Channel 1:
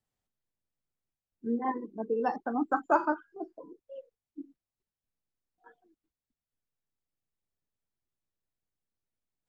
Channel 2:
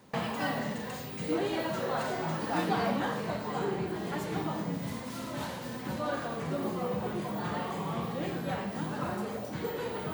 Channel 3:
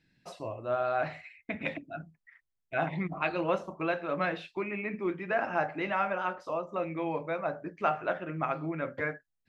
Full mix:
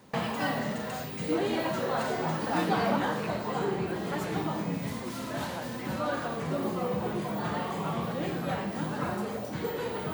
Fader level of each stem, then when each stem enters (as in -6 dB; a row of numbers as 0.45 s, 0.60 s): -8.5 dB, +2.0 dB, -13.0 dB; 0.00 s, 0.00 s, 0.00 s